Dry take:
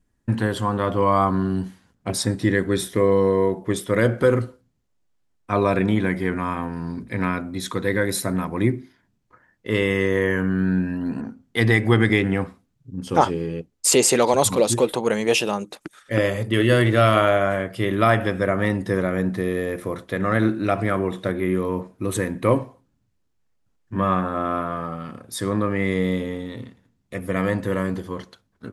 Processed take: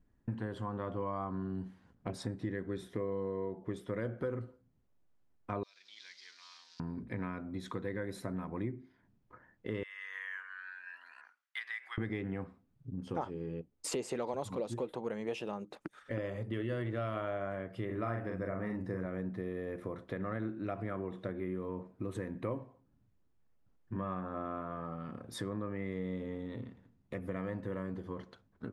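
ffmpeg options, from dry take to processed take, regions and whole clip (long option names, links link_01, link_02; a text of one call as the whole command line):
ffmpeg -i in.wav -filter_complex "[0:a]asettb=1/sr,asplit=3[link_01][link_02][link_03];[link_01]atrim=end=5.634[link_04];[link_02]atrim=start=5.63:end=6.8,asetpts=PTS-STARTPTS,afade=type=in:duration=0.004:curve=qsin,afade=type=out:start_time=1.166:duration=0.004:curve=qsin,aeval=exprs='val(0)+0.5*0.0224*sgn(val(0))':channel_layout=same,asuperpass=centerf=4900:order=4:qfactor=2.3,acontrast=69[link_05];[link_03]atrim=start=6.796[link_06];[link_04][link_05]acrossfade=duration=0.004:curve1=hsin:curve2=qsin[link_07];[link_07][link_06]acrossfade=duration=0.004:curve1=qsin:curve2=hsin,asettb=1/sr,asplit=3[link_08][link_09][link_10];[link_08]atrim=end=9.834[link_11];[link_09]atrim=start=9.83:end=11.98,asetpts=PTS-STARTPTS,afade=type=in:duration=0.004:curve=qsin,afade=type=out:start_time=2.146:duration=0.004:curve=qsin,acompressor=threshold=-21dB:ratio=2:attack=3.2:release=140:knee=1:detection=peak,highpass=frequency=1400:width=0.5412,highpass=frequency=1400:width=1.3066,highshelf=frequency=9500:gain=-4.5[link_12];[link_10]atrim=start=11.976[link_13];[link_11][link_12]acrossfade=duration=0.004:curve1=hsin:curve2=qsin[link_14];[link_14][link_13]acrossfade=duration=0.004:curve1=qsin:curve2=hsin,asettb=1/sr,asplit=3[link_15][link_16][link_17];[link_15]atrim=end=17.854[link_18];[link_16]atrim=start=17.85:end=19.06,asetpts=PTS-STARTPTS,afade=type=in:duration=0.004:curve=qsin,afade=type=out:start_time=1.206:duration=0.004:curve=qsin,equalizer=frequency=3300:width=4.4:gain=-12.5,asplit=2[link_19][link_20];[link_20]adelay=43,volume=-4dB[link_21];[link_19][link_21]amix=inputs=2:normalize=0,atrim=end_sample=53361[link_22];[link_17]atrim=start=19.056[link_23];[link_18][link_22]acrossfade=duration=0.004:curve1=hsin:curve2=qsin[link_24];[link_24][link_23]acrossfade=duration=0.004:curve1=qsin:curve2=hsin,lowpass=frequency=1400:poles=1,acompressor=threshold=-39dB:ratio=3,volume=-1dB" out.wav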